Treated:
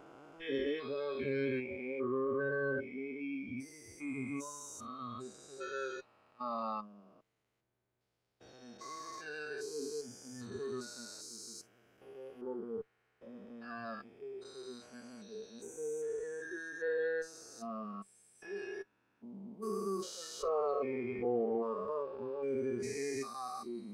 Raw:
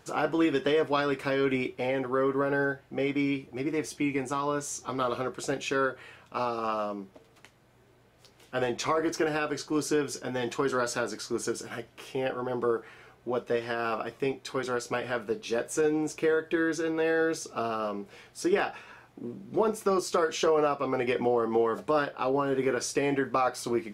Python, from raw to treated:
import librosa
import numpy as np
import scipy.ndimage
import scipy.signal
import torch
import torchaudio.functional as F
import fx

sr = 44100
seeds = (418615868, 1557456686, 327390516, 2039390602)

y = fx.spec_steps(x, sr, hold_ms=400)
y = fx.cheby_harmonics(y, sr, harmonics=(6,), levels_db=(-26,), full_scale_db=-17.5)
y = fx.noise_reduce_blind(y, sr, reduce_db=19)
y = y * librosa.db_to_amplitude(-3.5)